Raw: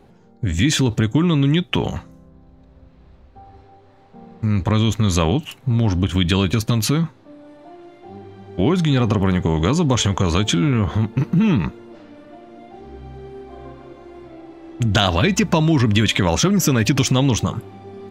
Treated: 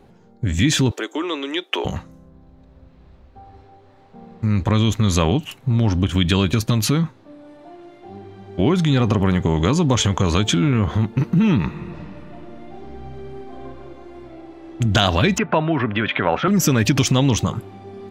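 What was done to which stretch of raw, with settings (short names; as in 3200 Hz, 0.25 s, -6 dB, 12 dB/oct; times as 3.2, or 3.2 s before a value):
0.91–1.85 steep high-pass 340 Hz
11.59–13.54 reverb throw, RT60 3 s, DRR 5 dB
15.38–16.48 speaker cabinet 180–2700 Hz, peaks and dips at 190 Hz -7 dB, 300 Hz -4 dB, 710 Hz +5 dB, 1400 Hz +7 dB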